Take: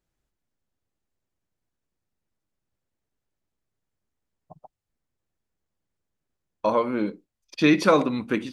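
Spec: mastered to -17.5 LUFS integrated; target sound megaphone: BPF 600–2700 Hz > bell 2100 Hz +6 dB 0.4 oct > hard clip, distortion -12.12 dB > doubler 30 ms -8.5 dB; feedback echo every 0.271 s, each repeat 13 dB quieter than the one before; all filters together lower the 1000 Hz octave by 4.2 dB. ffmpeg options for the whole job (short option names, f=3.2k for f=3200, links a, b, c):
-filter_complex "[0:a]highpass=600,lowpass=2.7k,equalizer=f=1k:t=o:g=-4.5,equalizer=f=2.1k:t=o:w=0.4:g=6,aecho=1:1:271|542|813:0.224|0.0493|0.0108,asoftclip=type=hard:threshold=-20dB,asplit=2[a][b];[b]adelay=30,volume=-8.5dB[c];[a][c]amix=inputs=2:normalize=0,volume=11.5dB"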